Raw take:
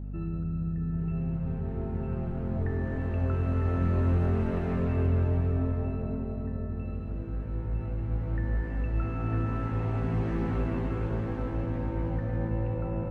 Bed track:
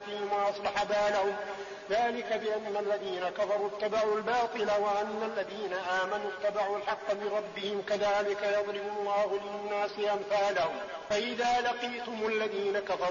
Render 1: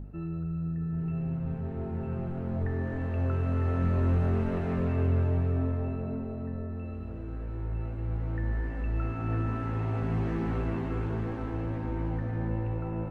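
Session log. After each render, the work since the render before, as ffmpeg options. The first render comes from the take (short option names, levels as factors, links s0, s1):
-af "bandreject=f=50:t=h:w=4,bandreject=f=100:t=h:w=4,bandreject=f=150:t=h:w=4,bandreject=f=200:t=h:w=4,bandreject=f=250:t=h:w=4,bandreject=f=300:t=h:w=4,bandreject=f=350:t=h:w=4,bandreject=f=400:t=h:w=4,bandreject=f=450:t=h:w=4,bandreject=f=500:t=h:w=4,bandreject=f=550:t=h:w=4"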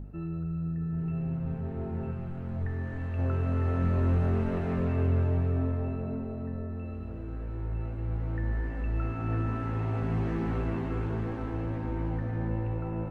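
-filter_complex "[0:a]asettb=1/sr,asplit=3[s0][s1][s2];[s0]atrim=end=2.114[s3];[s1]atrim=start=2.11:end=3.19,asetpts=PTS-STARTPTS,afade=t=in:d=0.004:c=qsin,afade=t=out:st=1.076:d=0.004:c=qsin,equalizer=f=430:t=o:w=2.5:g=-7[s4];[s2]atrim=start=3.186[s5];[s3][s4]acrossfade=d=0.004:c1=hsin:c2=qsin[s6];[s6][s5]acrossfade=d=0.004:c1=qsin:c2=hsin"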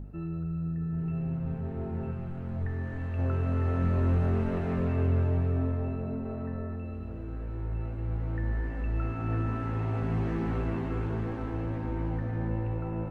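-filter_complex "[0:a]asettb=1/sr,asplit=3[s0][s1][s2];[s0]atrim=end=6.254[s3];[s1]atrim=start=6.25:end=6.76,asetpts=PTS-STARTPTS,afade=t=in:d=0.004:c=qsin,afade=t=out:st=0.506:d=0.004:c=qsin,equalizer=f=1400:w=0.59:g=5.5[s4];[s2]atrim=start=6.756[s5];[s3][s4]acrossfade=d=0.004:c1=hsin:c2=qsin[s6];[s6][s5]acrossfade=d=0.004:c1=qsin:c2=hsin"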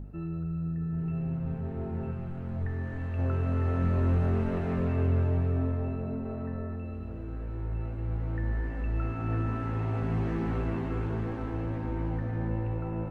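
-af anull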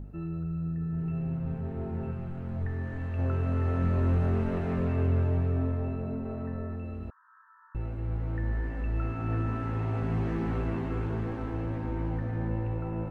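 -filter_complex "[0:a]asettb=1/sr,asplit=3[s0][s1][s2];[s0]atrim=end=7.104[s3];[s1]atrim=start=7.1:end=7.75,asetpts=PTS-STARTPTS,afade=t=in:d=0.004:c=qsin,afade=t=out:st=0.646:d=0.004:c=qsin,asuperpass=centerf=1300:order=20:qfactor=1.5[s4];[s2]atrim=start=7.746[s5];[s3][s4]acrossfade=d=0.004:c1=hsin:c2=qsin[s6];[s6][s5]acrossfade=d=0.004:c1=qsin:c2=hsin"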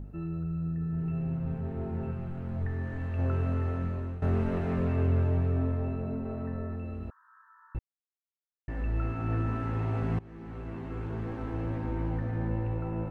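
-filter_complex "[0:a]asplit=5[s0][s1][s2][s3][s4];[s0]atrim=end=4.22,asetpts=PTS-STARTPTS,afade=t=out:st=3.42:d=0.8:silence=0.158489[s5];[s1]atrim=start=4.22:end=7.79,asetpts=PTS-STARTPTS,afade=t=in:d=0.004:c=hsin:silence=0.158489,afade=t=out:st=3.566:d=0.004:c=hsin[s6];[s2]atrim=start=7.79:end=8.68,asetpts=PTS-STARTPTS,volume=0[s7];[s3]atrim=start=8.68:end=10.19,asetpts=PTS-STARTPTS,afade=t=in:d=0.004:c=hsin,afade=t=out:st=1.506:d=0.004:c=hsin:silence=0.0749894[s8];[s4]atrim=start=10.19,asetpts=PTS-STARTPTS,afade=t=in:d=1.49:silence=0.0749894[s9];[s5][s6][s7][s8][s9]concat=n=5:v=0:a=1"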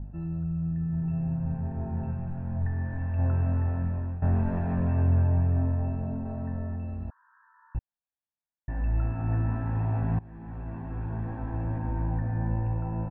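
-af "lowpass=1600,aecho=1:1:1.2:0.62"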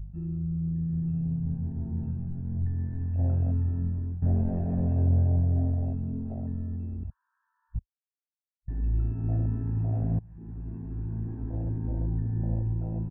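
-af "afwtdn=0.0282"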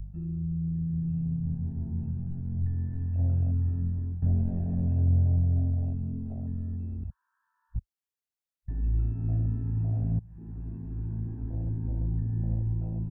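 -filter_complex "[0:a]acrossover=split=240|3000[s0][s1][s2];[s1]acompressor=threshold=0.00251:ratio=2[s3];[s0][s3][s2]amix=inputs=3:normalize=0"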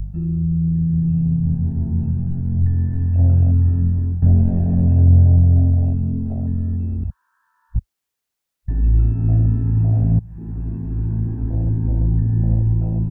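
-af "volume=3.98"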